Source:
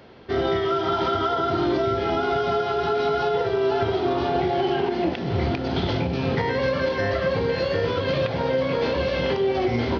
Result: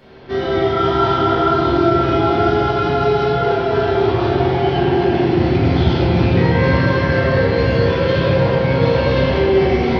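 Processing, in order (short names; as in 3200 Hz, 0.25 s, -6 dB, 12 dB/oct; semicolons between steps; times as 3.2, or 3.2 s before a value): limiter -16.5 dBFS, peak gain reduction 4 dB; reverb RT60 3.1 s, pre-delay 4 ms, DRR -10.5 dB; gain -2.5 dB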